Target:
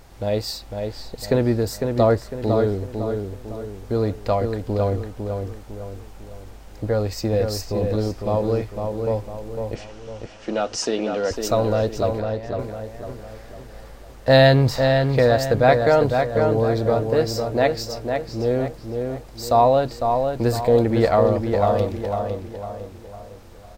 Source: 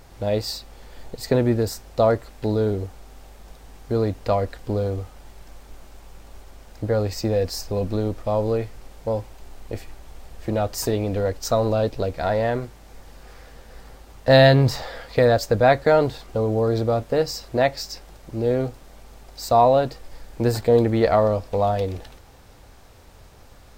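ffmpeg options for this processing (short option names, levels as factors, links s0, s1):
-filter_complex "[0:a]asettb=1/sr,asplit=3[s0][s1][s2];[s0]atrim=end=9.754[s3];[s1]atrim=start=9.75:end=11.31,asetpts=PTS-STARTPTS,afade=t=in:d=0.004:c=qsin,afade=t=out:st=1.556:d=0.004:c=qsin,highpass=f=200:w=0.5412,highpass=f=200:w=1.3066,equalizer=f=1400:t=q:w=4:g=6,equalizer=f=2900:t=q:w=4:g=9,equalizer=f=5700:t=q:w=4:g=7,lowpass=f=7600:w=0.5412,lowpass=f=7600:w=1.3066[s4];[s2]atrim=start=11.306[s5];[s3][s4]acrossfade=d=0.004:c1=hsin:c2=qsin[s6];[s6][s5]acrossfade=d=0.004:c1=qsin:c2=hsin,asettb=1/sr,asplit=3[s7][s8][s9];[s7]atrim=end=12.144[s10];[s8]atrim=start=12.14:end=12.59,asetpts=PTS-STARTPTS,afade=t=in:d=0.004:c=qsin,afade=t=out:st=0.446:d=0.004:c=qsin,acompressor=threshold=0.02:ratio=6[s11];[s9]atrim=start=12.586[s12];[s10][s11]acrossfade=d=0.004:c1=hsin:c2=qsin[s13];[s13][s12]acrossfade=d=0.004:c1=qsin:c2=hsin,asplit=2[s14][s15];[s15]adelay=503,lowpass=f=3100:p=1,volume=0.562,asplit=2[s16][s17];[s17]adelay=503,lowpass=f=3100:p=1,volume=0.43,asplit=2[s18][s19];[s19]adelay=503,lowpass=f=3100:p=1,volume=0.43,asplit=2[s20][s21];[s21]adelay=503,lowpass=f=3100:p=1,volume=0.43,asplit=2[s22][s23];[s23]adelay=503,lowpass=f=3100:p=1,volume=0.43[s24];[s14][s16][s18][s20][s22][s24]amix=inputs=6:normalize=0"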